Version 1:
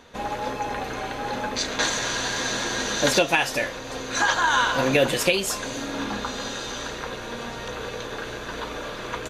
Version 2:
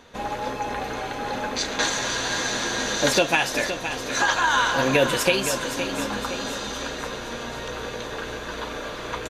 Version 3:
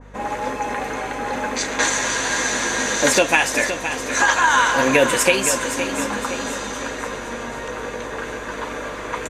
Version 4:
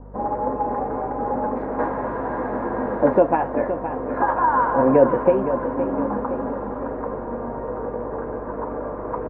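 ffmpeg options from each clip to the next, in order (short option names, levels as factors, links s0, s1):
-af "aecho=1:1:516|1032|1548|2064|2580|3096:0.335|0.171|0.0871|0.0444|0.0227|0.0116"
-af "equalizer=f=125:t=o:w=1:g=3,equalizer=f=250:t=o:w=1:g=10,equalizer=f=500:t=o:w=1:g=8,equalizer=f=1000:t=o:w=1:g=9,equalizer=f=2000:t=o:w=1:g=10,equalizer=f=4000:t=o:w=1:g=-5,equalizer=f=8000:t=o:w=1:g=11,aeval=exprs='val(0)+0.02*(sin(2*PI*50*n/s)+sin(2*PI*2*50*n/s)/2+sin(2*PI*3*50*n/s)/3+sin(2*PI*4*50*n/s)/4+sin(2*PI*5*50*n/s)/5)':c=same,adynamicequalizer=threshold=0.0501:dfrequency=2000:dqfactor=0.7:tfrequency=2000:tqfactor=0.7:attack=5:release=100:ratio=0.375:range=4:mode=boostabove:tftype=highshelf,volume=0.398"
-af "lowpass=f=1000:w=0.5412,lowpass=f=1000:w=1.3066,volume=1.33"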